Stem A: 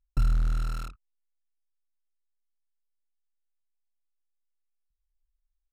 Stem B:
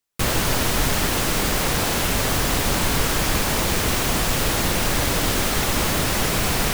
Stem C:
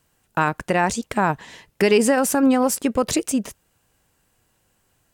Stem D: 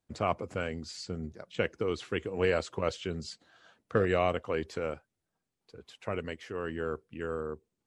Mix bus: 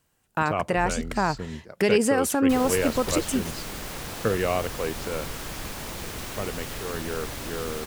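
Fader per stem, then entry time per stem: -13.0, -14.0, -4.5, +2.0 dB; 0.60, 2.30, 0.00, 0.30 s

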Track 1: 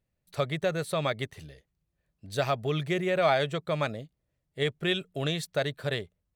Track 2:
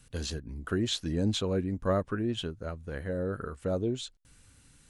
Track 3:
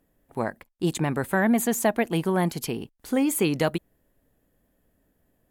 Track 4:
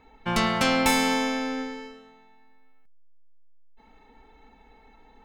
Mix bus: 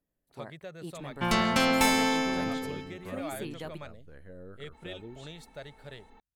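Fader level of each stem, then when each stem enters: -15.5, -15.0, -17.0, -2.0 dB; 0.00, 1.20, 0.00, 0.95 s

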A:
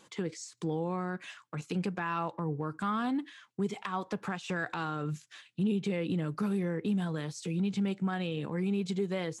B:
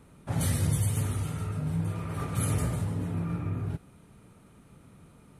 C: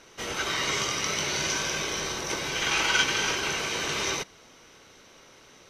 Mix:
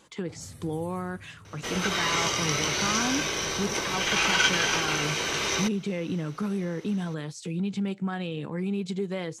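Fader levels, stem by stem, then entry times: +1.5, -18.5, +1.0 dB; 0.00, 0.00, 1.45 s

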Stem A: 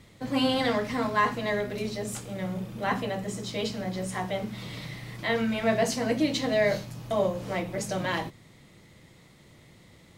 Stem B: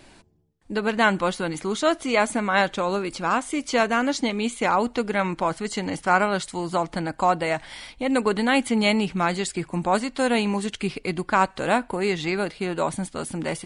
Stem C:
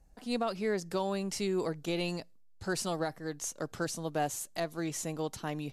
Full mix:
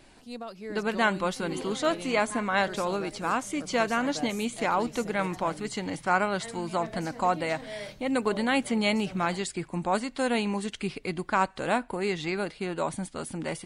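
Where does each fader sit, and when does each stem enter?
-15.5, -5.0, -7.0 dB; 1.15, 0.00, 0.00 s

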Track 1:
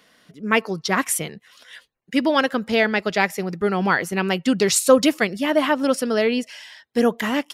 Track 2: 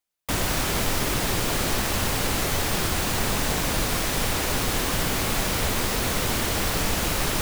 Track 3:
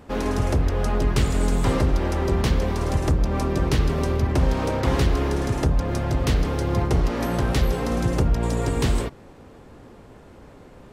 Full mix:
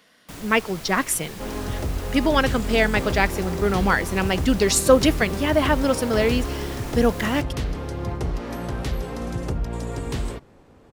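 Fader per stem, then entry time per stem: -1.0, -14.5, -6.0 dB; 0.00, 0.00, 1.30 s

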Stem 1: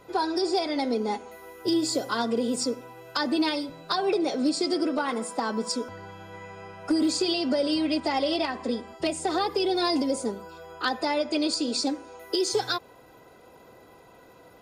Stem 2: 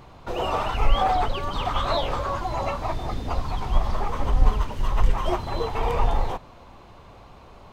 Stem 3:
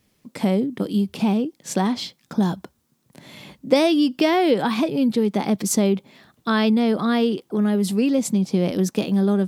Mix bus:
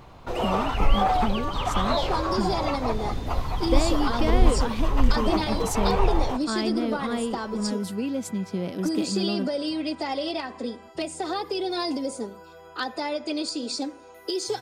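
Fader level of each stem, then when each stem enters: -3.0, -0.5, -9.0 dB; 1.95, 0.00, 0.00 s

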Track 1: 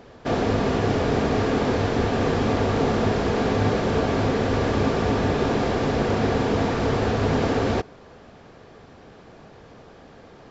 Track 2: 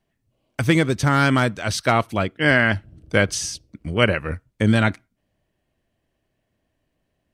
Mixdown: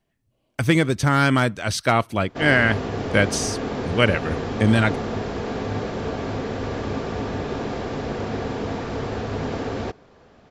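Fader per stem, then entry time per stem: -5.5, -0.5 dB; 2.10, 0.00 s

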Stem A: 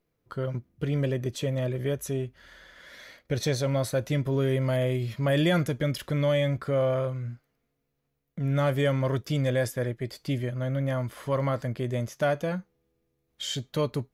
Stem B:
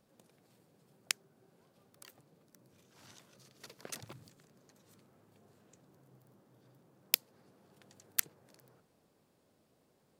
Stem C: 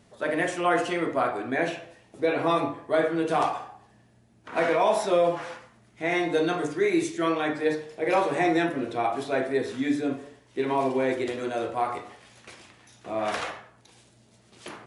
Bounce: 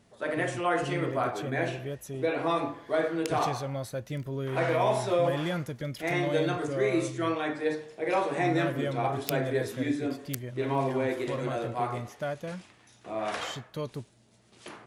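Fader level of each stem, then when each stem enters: -8.0, -6.5, -4.0 dB; 0.00, 2.15, 0.00 s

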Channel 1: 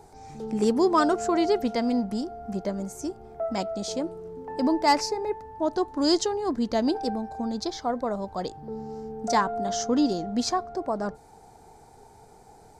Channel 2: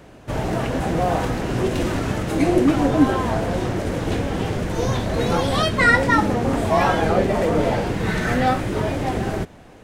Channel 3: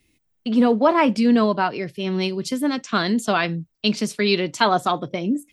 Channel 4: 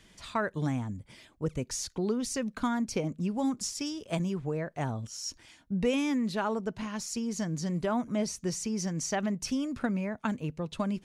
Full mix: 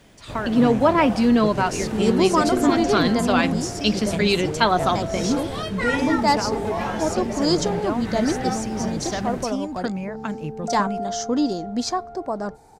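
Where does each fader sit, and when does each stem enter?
+1.5, -9.5, -0.5, +2.5 dB; 1.40, 0.00, 0.00, 0.00 s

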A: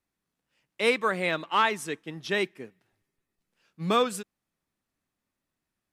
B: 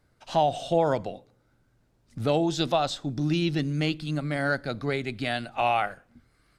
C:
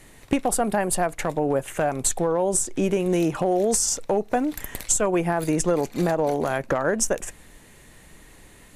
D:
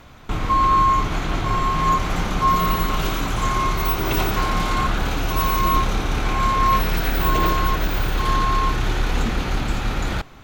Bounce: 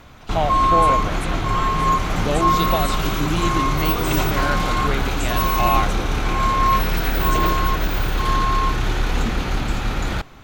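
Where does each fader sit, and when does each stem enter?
-9.0, +1.0, -15.0, +0.5 dB; 0.00, 0.00, 0.30, 0.00 s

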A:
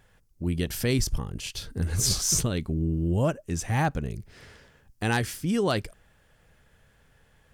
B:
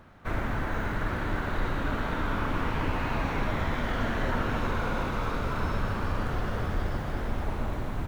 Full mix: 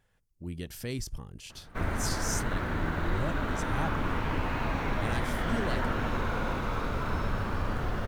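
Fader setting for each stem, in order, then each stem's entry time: -10.5, -1.5 dB; 0.00, 1.50 s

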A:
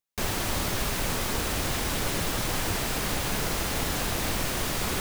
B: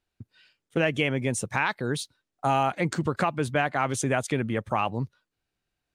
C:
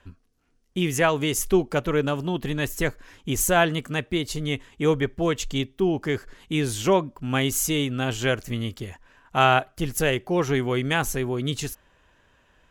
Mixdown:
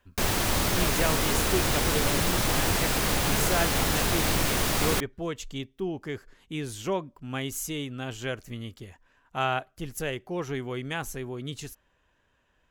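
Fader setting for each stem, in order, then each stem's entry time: +3.0, -15.5, -9.0 dB; 0.00, 0.00, 0.00 s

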